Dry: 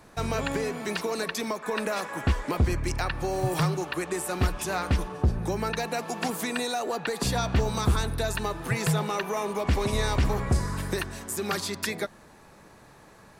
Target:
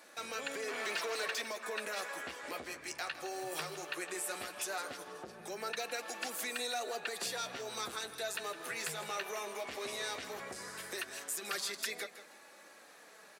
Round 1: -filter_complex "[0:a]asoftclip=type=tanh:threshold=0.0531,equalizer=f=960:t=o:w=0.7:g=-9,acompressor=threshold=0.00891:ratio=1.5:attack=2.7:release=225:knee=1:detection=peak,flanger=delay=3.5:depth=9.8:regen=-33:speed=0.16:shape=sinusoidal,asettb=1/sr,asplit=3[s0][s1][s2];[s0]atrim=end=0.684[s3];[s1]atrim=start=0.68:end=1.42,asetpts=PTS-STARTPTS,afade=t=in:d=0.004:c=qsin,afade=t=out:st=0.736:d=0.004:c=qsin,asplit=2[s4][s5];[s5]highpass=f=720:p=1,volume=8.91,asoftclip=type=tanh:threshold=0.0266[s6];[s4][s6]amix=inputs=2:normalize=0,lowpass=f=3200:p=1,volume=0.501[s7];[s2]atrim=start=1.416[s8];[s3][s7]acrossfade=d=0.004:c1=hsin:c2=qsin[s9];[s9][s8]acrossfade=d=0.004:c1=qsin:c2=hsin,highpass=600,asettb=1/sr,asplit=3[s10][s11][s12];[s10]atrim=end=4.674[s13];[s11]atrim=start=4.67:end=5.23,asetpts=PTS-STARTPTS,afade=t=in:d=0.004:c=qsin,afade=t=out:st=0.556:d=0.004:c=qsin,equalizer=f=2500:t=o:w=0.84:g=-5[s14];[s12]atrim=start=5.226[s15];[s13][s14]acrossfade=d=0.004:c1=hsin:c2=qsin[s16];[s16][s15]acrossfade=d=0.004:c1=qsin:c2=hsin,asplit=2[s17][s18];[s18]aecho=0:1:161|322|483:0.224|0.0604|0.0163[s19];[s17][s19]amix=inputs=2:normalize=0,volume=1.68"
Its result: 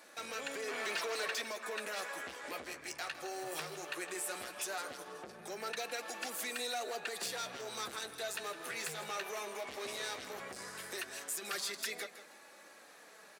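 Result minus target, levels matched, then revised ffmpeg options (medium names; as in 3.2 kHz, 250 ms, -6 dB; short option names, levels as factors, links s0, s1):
saturation: distortion +9 dB
-filter_complex "[0:a]asoftclip=type=tanh:threshold=0.133,equalizer=f=960:t=o:w=0.7:g=-9,acompressor=threshold=0.00891:ratio=1.5:attack=2.7:release=225:knee=1:detection=peak,flanger=delay=3.5:depth=9.8:regen=-33:speed=0.16:shape=sinusoidal,asettb=1/sr,asplit=3[s0][s1][s2];[s0]atrim=end=0.684[s3];[s1]atrim=start=0.68:end=1.42,asetpts=PTS-STARTPTS,afade=t=in:d=0.004:c=qsin,afade=t=out:st=0.736:d=0.004:c=qsin,asplit=2[s4][s5];[s5]highpass=f=720:p=1,volume=8.91,asoftclip=type=tanh:threshold=0.0266[s6];[s4][s6]amix=inputs=2:normalize=0,lowpass=f=3200:p=1,volume=0.501[s7];[s2]atrim=start=1.416[s8];[s3][s7]acrossfade=d=0.004:c1=hsin:c2=qsin[s9];[s9][s8]acrossfade=d=0.004:c1=qsin:c2=hsin,highpass=600,asettb=1/sr,asplit=3[s10][s11][s12];[s10]atrim=end=4.674[s13];[s11]atrim=start=4.67:end=5.23,asetpts=PTS-STARTPTS,afade=t=in:d=0.004:c=qsin,afade=t=out:st=0.556:d=0.004:c=qsin,equalizer=f=2500:t=o:w=0.84:g=-5[s14];[s12]atrim=start=5.226[s15];[s13][s14]acrossfade=d=0.004:c1=hsin:c2=qsin[s16];[s16][s15]acrossfade=d=0.004:c1=qsin:c2=hsin,asplit=2[s17][s18];[s18]aecho=0:1:161|322|483:0.224|0.0604|0.0163[s19];[s17][s19]amix=inputs=2:normalize=0,volume=1.68"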